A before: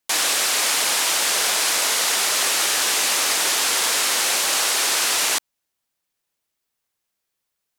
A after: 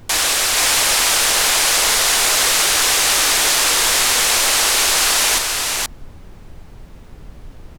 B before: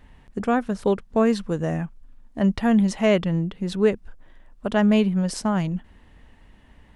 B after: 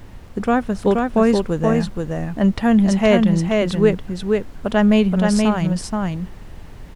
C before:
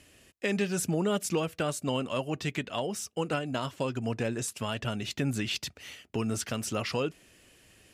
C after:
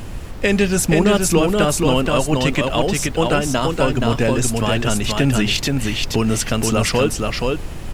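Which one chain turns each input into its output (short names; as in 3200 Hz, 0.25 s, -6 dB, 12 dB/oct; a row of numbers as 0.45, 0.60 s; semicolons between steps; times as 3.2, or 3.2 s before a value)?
added noise brown -40 dBFS; on a send: echo 0.476 s -3.5 dB; on the sum: normalise peaks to -1.5 dBFS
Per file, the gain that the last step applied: +3.5, +3.5, +12.5 dB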